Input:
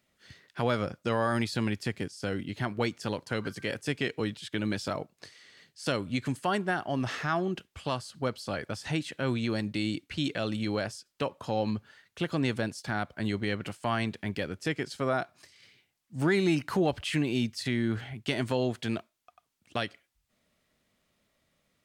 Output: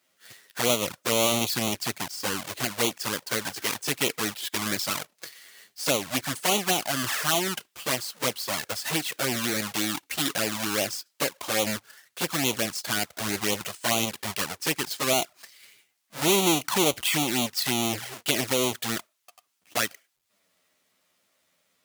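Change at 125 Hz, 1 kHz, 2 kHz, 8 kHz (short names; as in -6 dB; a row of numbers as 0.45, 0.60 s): -4.0, +4.0, +5.0, +19.5 dB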